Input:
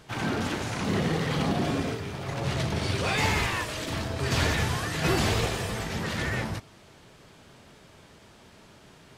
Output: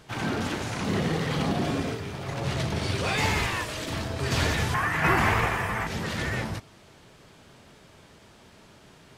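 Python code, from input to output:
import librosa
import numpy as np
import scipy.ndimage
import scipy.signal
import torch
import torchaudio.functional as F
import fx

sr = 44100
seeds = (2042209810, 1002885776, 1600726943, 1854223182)

y = fx.graphic_eq(x, sr, hz=(500, 1000, 2000, 4000, 8000), db=(-4, 9, 9, -10, -5), at=(4.74, 5.87))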